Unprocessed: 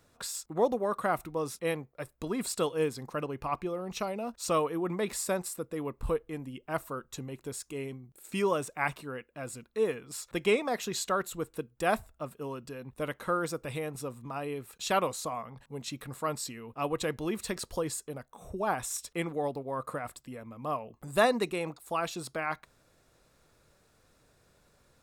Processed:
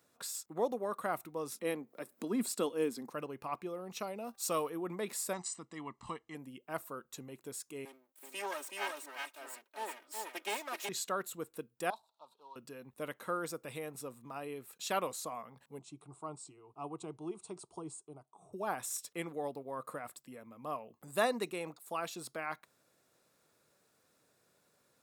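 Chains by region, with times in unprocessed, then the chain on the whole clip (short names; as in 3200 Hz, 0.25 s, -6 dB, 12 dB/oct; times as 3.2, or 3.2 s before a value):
1.52–3.1 upward compressor, threshold -37 dBFS + resonant high-pass 230 Hz, resonance Q 2.8
4.24–4.7 high shelf 8100 Hz +8 dB + de-hum 391.4 Hz, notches 16
5.33–6.35 steep low-pass 7900 Hz 48 dB/oct + tilt +1.5 dB/oct + comb 1 ms, depth 77%
7.85–10.89 minimum comb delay 3.2 ms + HPF 550 Hz + echo 0.375 s -3 dB
11.9–12.56 G.711 law mismatch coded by mu + upward compressor, threshold -42 dBFS + double band-pass 1900 Hz, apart 2.1 oct
15.79–18.53 brick-wall FIR low-pass 9900 Hz + bell 4800 Hz -12.5 dB 2 oct + fixed phaser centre 350 Hz, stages 8
whole clip: HPF 170 Hz 12 dB/oct; high shelf 10000 Hz +8.5 dB; gain -6.5 dB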